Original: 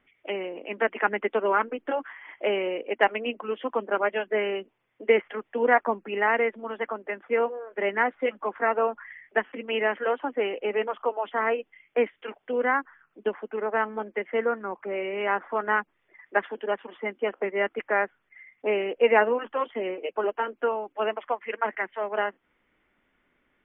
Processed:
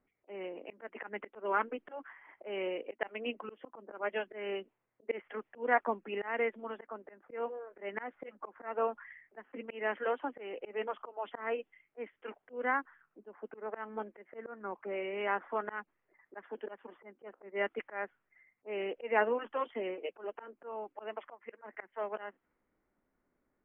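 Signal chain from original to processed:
volume swells 198 ms
low-pass that shuts in the quiet parts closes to 1,000 Hz, open at −23.5 dBFS
level −7 dB

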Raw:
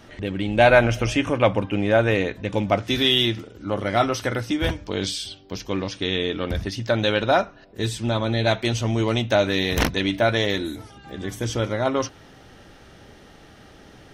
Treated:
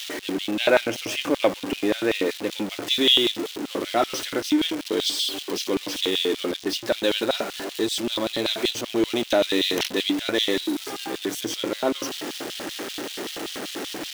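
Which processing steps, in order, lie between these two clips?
converter with a step at zero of −22.5 dBFS
auto-filter high-pass square 5.2 Hz 320–3,300 Hz
level −5 dB

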